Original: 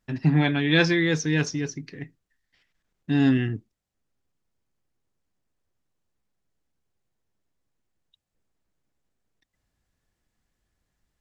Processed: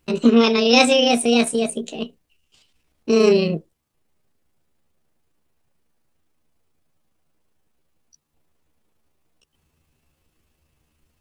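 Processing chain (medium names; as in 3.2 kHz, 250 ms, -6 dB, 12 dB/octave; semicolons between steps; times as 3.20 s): rotating-head pitch shifter +7.5 st; in parallel at -2.5 dB: compression, threshold -31 dBFS, peak gain reduction 14.5 dB; on the sum: trim +5.5 dB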